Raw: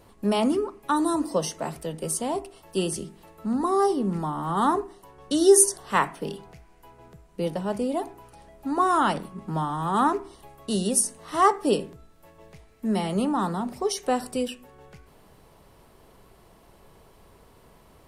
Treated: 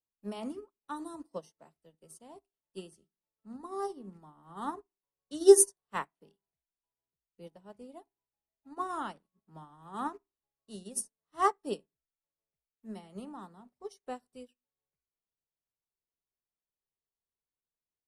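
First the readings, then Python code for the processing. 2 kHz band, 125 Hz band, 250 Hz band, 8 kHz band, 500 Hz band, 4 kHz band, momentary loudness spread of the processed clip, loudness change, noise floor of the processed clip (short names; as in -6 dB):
-13.0 dB, -21.0 dB, -14.0 dB, -8.5 dB, -6.0 dB, -14.5 dB, 21 LU, -5.5 dB, under -85 dBFS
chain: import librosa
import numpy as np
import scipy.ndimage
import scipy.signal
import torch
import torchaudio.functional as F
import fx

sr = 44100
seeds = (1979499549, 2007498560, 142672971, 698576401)

y = fx.upward_expand(x, sr, threshold_db=-44.0, expansion=2.5)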